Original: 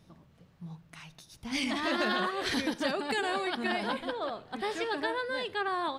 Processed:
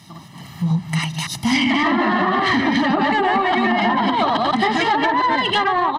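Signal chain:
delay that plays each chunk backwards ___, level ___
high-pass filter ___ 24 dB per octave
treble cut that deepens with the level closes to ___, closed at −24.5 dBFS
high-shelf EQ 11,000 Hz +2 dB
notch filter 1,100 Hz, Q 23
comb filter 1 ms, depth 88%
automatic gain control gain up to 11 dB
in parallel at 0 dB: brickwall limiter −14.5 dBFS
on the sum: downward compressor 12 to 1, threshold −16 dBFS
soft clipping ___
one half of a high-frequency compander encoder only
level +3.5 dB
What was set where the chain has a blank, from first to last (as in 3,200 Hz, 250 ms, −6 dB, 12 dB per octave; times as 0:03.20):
141 ms, −1 dB, 100 Hz, 1,700 Hz, −12 dBFS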